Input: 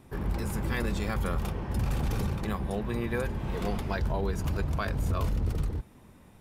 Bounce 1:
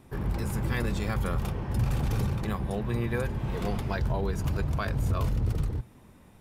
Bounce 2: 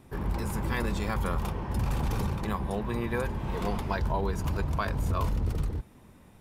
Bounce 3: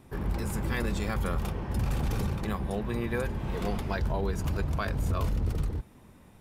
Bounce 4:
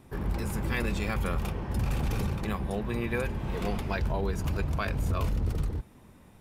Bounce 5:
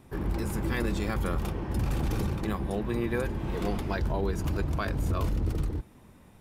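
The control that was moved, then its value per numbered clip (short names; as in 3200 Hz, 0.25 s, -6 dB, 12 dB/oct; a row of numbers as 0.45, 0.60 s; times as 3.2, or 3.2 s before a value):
dynamic EQ, frequency: 120, 970, 7800, 2500, 320 Hz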